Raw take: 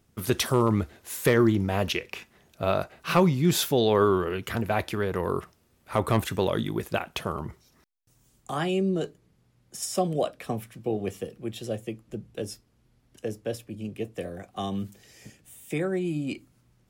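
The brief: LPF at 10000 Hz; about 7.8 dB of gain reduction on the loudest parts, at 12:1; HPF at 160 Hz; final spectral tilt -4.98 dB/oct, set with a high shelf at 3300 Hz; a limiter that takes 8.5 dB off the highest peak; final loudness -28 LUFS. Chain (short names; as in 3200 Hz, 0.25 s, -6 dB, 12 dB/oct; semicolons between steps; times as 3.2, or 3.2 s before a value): HPF 160 Hz; LPF 10000 Hz; high shelf 3300 Hz -7.5 dB; compressor 12:1, threshold -24 dBFS; gain +6 dB; limiter -15 dBFS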